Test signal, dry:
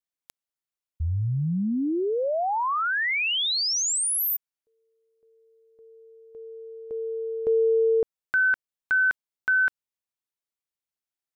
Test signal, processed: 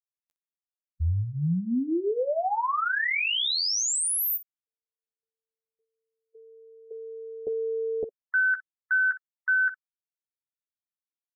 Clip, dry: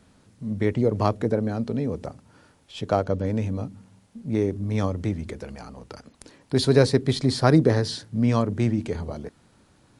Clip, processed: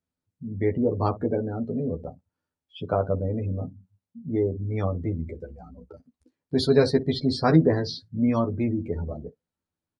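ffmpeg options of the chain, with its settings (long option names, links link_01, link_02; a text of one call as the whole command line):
ffmpeg -i in.wav -af "aecho=1:1:12|61:0.668|0.188,afftdn=noise_reduction=30:noise_floor=-32,volume=-3dB" out.wav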